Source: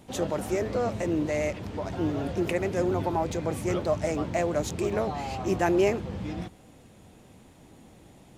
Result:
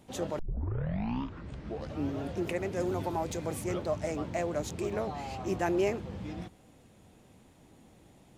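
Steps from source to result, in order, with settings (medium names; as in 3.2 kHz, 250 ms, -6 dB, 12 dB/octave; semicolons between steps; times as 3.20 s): 0.39 s: tape start 1.83 s; 2.80–3.64 s: treble shelf 5.3 kHz +8.5 dB; trim -5.5 dB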